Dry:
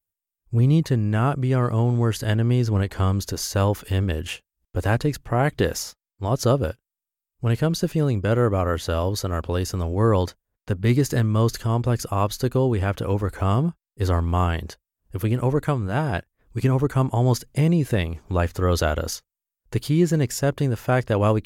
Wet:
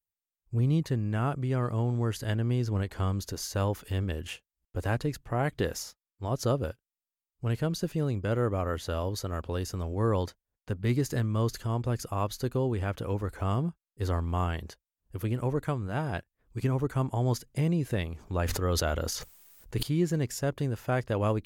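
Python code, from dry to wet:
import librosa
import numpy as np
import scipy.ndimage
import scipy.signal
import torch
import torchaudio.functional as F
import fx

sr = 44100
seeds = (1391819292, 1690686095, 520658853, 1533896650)

y = fx.sustainer(x, sr, db_per_s=29.0, at=(18.17, 19.83))
y = y * librosa.db_to_amplitude(-8.0)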